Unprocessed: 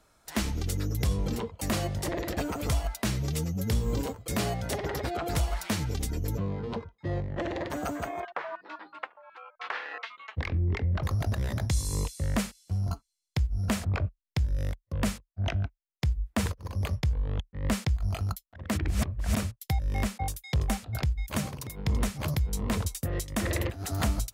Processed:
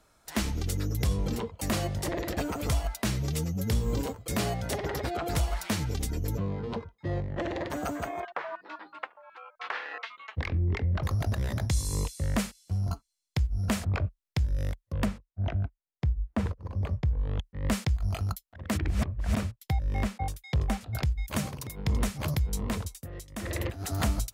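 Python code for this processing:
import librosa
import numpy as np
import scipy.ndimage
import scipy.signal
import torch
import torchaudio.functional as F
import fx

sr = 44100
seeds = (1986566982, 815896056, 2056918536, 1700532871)

y = fx.lowpass(x, sr, hz=1000.0, slope=6, at=(15.04, 17.18), fade=0.02)
y = fx.high_shelf(y, sr, hz=4700.0, db=-9.5, at=(18.88, 20.81))
y = fx.edit(y, sr, fx.fade_down_up(start_s=22.57, length_s=1.18, db=-10.0, fade_s=0.42), tone=tone)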